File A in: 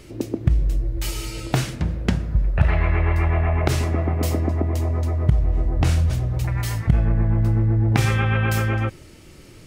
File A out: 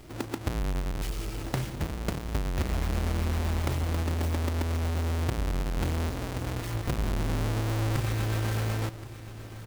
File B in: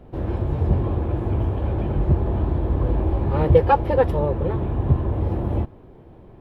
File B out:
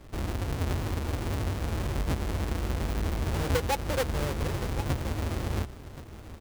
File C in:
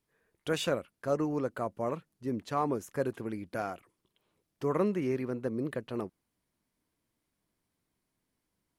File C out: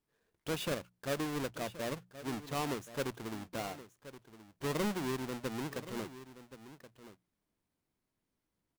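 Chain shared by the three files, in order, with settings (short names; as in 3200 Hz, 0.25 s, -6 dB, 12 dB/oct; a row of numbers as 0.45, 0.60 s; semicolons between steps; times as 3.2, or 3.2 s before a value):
half-waves squared off; compressor 2:1, threshold -22 dBFS; notches 60/120/180 Hz; echo 1.075 s -14.5 dB; gain -8.5 dB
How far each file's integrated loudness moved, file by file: -9.0, -9.0, -5.0 LU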